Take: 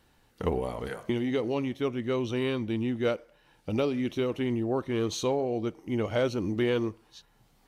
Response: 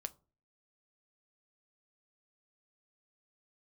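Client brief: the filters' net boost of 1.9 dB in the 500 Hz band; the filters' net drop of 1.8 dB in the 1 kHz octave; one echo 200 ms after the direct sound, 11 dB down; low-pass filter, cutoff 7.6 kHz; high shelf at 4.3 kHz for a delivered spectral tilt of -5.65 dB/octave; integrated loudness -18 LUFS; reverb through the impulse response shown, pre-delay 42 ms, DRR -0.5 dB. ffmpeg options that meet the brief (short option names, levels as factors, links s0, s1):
-filter_complex "[0:a]lowpass=7600,equalizer=f=500:t=o:g=3,equalizer=f=1000:t=o:g=-4,highshelf=f=4300:g=5.5,aecho=1:1:200:0.282,asplit=2[s0][s1];[1:a]atrim=start_sample=2205,adelay=42[s2];[s1][s2]afir=irnorm=-1:irlink=0,volume=1.5[s3];[s0][s3]amix=inputs=2:normalize=0,volume=2.37"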